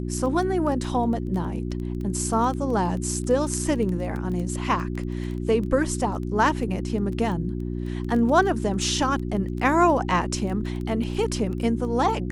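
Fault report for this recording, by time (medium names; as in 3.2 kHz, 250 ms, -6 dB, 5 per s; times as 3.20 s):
crackle 11 per s -29 dBFS
hum 60 Hz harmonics 6 -29 dBFS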